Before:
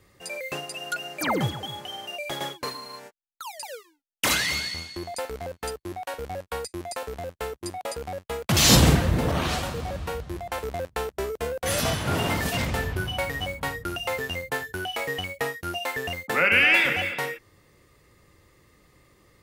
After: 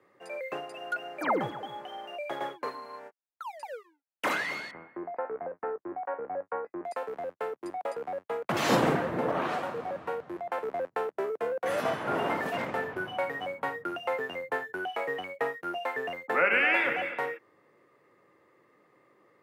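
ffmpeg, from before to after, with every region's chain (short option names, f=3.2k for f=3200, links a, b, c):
-filter_complex "[0:a]asettb=1/sr,asplit=3[a][b][c];[a]atrim=end=4.714[d];[b]atrim=start=4.71:end=6.85,asetpts=PTS-STARTPTS,afade=t=in:d=0.004:c=qsin,afade=t=out:st=2.136:d=0.004:c=qsin,lowpass=f=1.8k:w=0.5412,lowpass=f=1.8k:w=1.3066,asplit=2[e][f];[f]adelay=18,volume=-11dB[g];[e][g]amix=inputs=2:normalize=0,atrim=end_sample=94374[h];[c]atrim=start=6.846[i];[d][h]acrossfade=d=0.004:c1=hsin:c2=qsin[j];[j][i]acrossfade=d=0.004:c1=qsin:c2=hsin,highpass=f=120:w=0.5412,highpass=f=120:w=1.3066,acrossover=split=280 2000:gain=0.178 1 0.1[k][l][m];[k][l][m]amix=inputs=3:normalize=0"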